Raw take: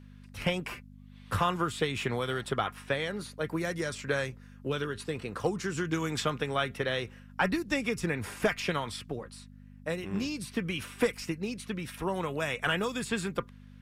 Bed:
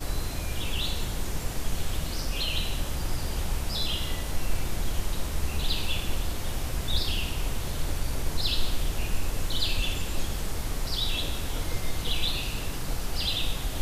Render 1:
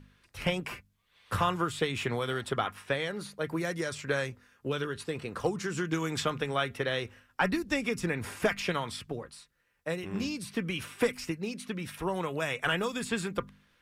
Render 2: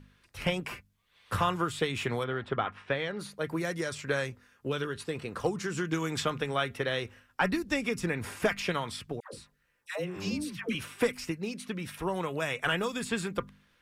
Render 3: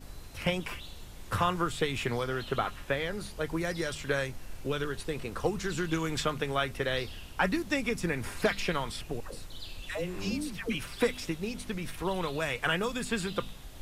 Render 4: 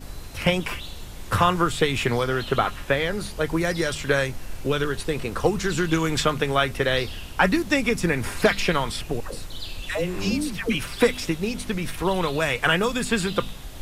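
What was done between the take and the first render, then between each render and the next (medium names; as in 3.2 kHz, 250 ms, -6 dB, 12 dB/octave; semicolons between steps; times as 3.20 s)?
de-hum 50 Hz, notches 5
2.23–3.18 s: low-pass 2 kHz -> 4.6 kHz; 9.20–10.75 s: phase dispersion lows, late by 133 ms, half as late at 790 Hz
add bed -16 dB
trim +8.5 dB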